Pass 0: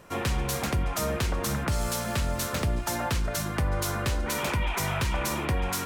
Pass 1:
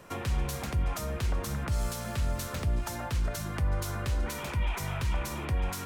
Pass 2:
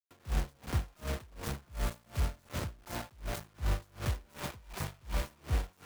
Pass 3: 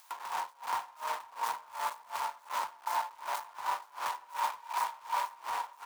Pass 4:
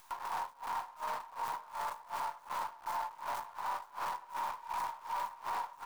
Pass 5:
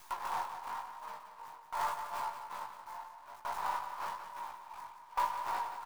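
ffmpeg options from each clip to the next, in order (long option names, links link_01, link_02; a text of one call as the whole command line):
ffmpeg -i in.wav -filter_complex "[0:a]acrossover=split=120[link_01][link_02];[link_02]acompressor=threshold=-35dB:ratio=6[link_03];[link_01][link_03]amix=inputs=2:normalize=0" out.wav
ffmpeg -i in.wav -af "highshelf=frequency=2300:gain=-11,acrusher=bits=5:mix=0:aa=0.000001,aeval=exprs='val(0)*pow(10,-30*(0.5-0.5*cos(2*PI*2.7*n/s))/20)':channel_layout=same" out.wav
ffmpeg -i in.wav -filter_complex "[0:a]acompressor=mode=upward:threshold=-34dB:ratio=2.5,highpass=frequency=940:width_type=q:width=9.9,asplit=2[link_01][link_02];[link_02]adelay=501.5,volume=-23dB,highshelf=frequency=4000:gain=-11.3[link_03];[link_01][link_03]amix=inputs=2:normalize=0" out.wav
ffmpeg -i in.wav -filter_complex "[0:a]acrossover=split=880|1700[link_01][link_02][link_03];[link_03]aeval=exprs='max(val(0),0)':channel_layout=same[link_04];[link_01][link_02][link_04]amix=inputs=3:normalize=0,alimiter=level_in=6dB:limit=-24dB:level=0:latency=1:release=18,volume=-6dB,volume=1.5dB" out.wav
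ffmpeg -i in.wav -af "flanger=delay=15.5:depth=5.7:speed=0.92,aecho=1:1:177:0.473,aeval=exprs='val(0)*pow(10,-20*if(lt(mod(0.58*n/s,1),2*abs(0.58)/1000),1-mod(0.58*n/s,1)/(2*abs(0.58)/1000),(mod(0.58*n/s,1)-2*abs(0.58)/1000)/(1-2*abs(0.58)/1000))/20)':channel_layout=same,volume=8dB" out.wav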